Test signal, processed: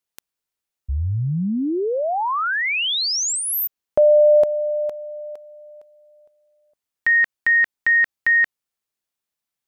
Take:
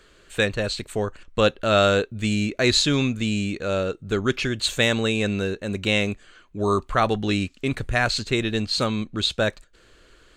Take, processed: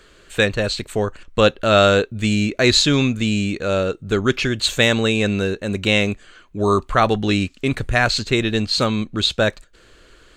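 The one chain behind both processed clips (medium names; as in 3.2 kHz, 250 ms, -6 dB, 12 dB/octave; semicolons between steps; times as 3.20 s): dynamic bell 9.3 kHz, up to -4 dB, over -50 dBFS, Q 3.5; trim +4.5 dB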